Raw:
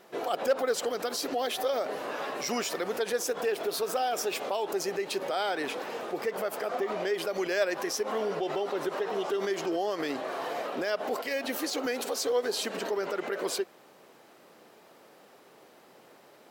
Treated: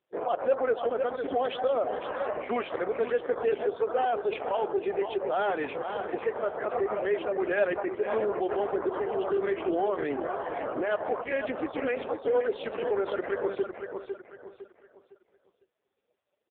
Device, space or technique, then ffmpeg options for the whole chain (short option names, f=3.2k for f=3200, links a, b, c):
telephone: -filter_complex "[0:a]asplit=3[a][b][c];[a]afade=t=out:st=10.13:d=0.02[d];[b]lowpass=f=5.6k:w=0.5412,lowpass=f=5.6k:w=1.3066,afade=t=in:st=10.13:d=0.02,afade=t=out:st=11.61:d=0.02[e];[c]afade=t=in:st=11.61:d=0.02[f];[d][e][f]amix=inputs=3:normalize=0,afftdn=nr=35:nf=-40,highpass=260,lowpass=3.3k,aecho=1:1:506|1012|1518|2024:0.398|0.135|0.046|0.0156,asoftclip=type=tanh:threshold=-20.5dB,volume=4.5dB" -ar 8000 -c:a libopencore_amrnb -b:a 5150